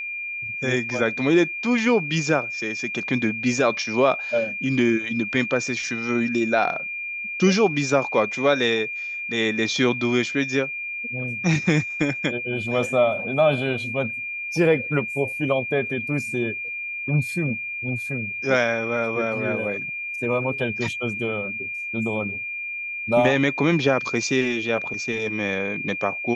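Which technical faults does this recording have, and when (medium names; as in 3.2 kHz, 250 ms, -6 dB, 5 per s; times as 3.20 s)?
whine 2.4 kHz -28 dBFS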